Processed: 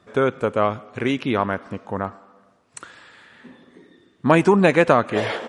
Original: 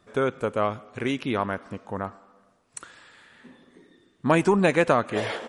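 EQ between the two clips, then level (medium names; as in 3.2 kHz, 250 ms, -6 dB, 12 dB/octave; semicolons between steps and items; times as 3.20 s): high-pass 56 Hz; treble shelf 8.5 kHz -11 dB; +5.0 dB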